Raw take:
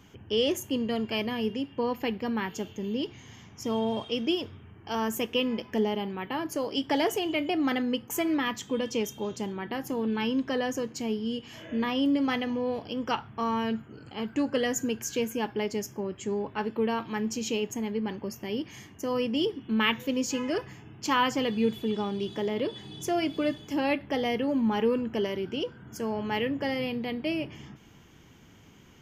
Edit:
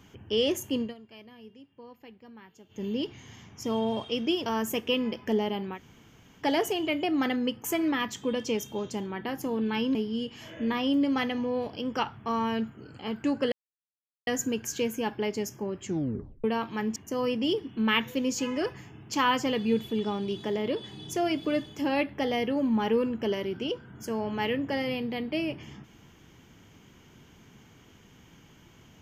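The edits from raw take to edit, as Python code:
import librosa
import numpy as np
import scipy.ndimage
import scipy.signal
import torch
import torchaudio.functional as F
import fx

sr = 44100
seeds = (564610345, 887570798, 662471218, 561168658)

y = fx.edit(x, sr, fx.fade_down_up(start_s=0.81, length_s=2.01, db=-19.5, fade_s=0.13),
    fx.cut(start_s=4.46, length_s=0.46),
    fx.room_tone_fill(start_s=6.22, length_s=0.66, crossfade_s=0.1),
    fx.cut(start_s=10.41, length_s=0.66),
    fx.insert_silence(at_s=14.64, length_s=0.75),
    fx.tape_stop(start_s=16.22, length_s=0.59),
    fx.cut(start_s=17.33, length_s=1.55), tone=tone)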